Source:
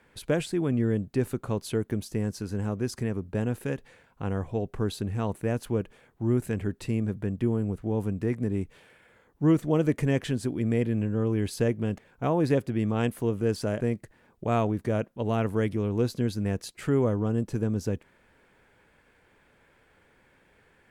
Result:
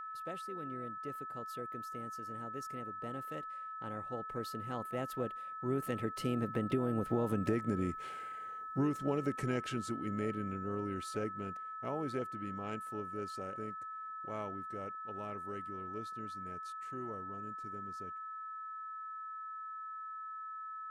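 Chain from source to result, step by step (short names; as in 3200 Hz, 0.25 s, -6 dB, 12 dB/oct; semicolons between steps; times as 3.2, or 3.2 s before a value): Doppler pass-by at 7.46, 32 m/s, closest 7.5 m; low shelf 150 Hz -11.5 dB; compressor 16:1, threshold -42 dBFS, peak gain reduction 16.5 dB; whine 1300 Hz -55 dBFS; harmoniser +5 st -16 dB; gain +13 dB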